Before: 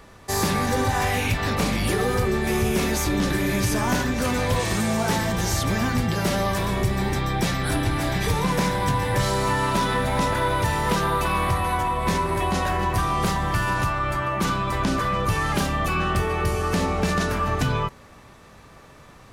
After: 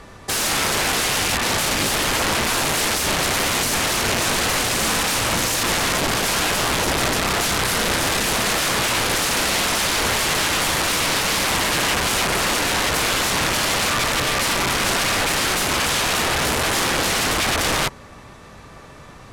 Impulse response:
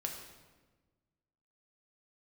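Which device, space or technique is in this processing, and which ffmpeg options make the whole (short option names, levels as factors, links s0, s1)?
overflowing digital effects unit: -af "aeval=exprs='(mod(11.2*val(0)+1,2)-1)/11.2':c=same,lowpass=12000,volume=2"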